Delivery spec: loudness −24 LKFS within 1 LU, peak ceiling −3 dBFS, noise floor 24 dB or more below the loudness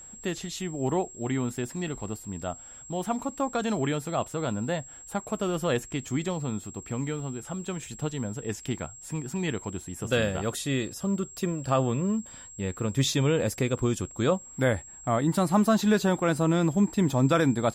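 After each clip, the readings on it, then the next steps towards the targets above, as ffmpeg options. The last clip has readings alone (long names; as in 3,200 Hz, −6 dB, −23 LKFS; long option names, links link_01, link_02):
interfering tone 7,600 Hz; level of the tone −44 dBFS; integrated loudness −28.5 LKFS; sample peak −11.0 dBFS; target loudness −24.0 LKFS
→ -af "bandreject=frequency=7600:width=30"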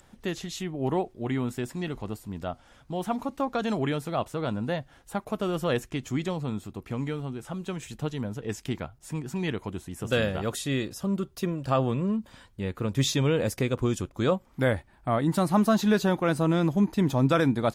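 interfering tone none found; integrated loudness −28.5 LKFS; sample peak −11.0 dBFS; target loudness −24.0 LKFS
→ -af "volume=4.5dB"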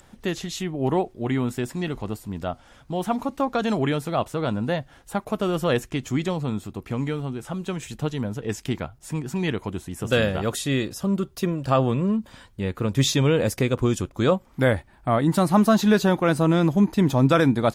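integrated loudness −24.0 LKFS; sample peak −6.5 dBFS; background noise floor −54 dBFS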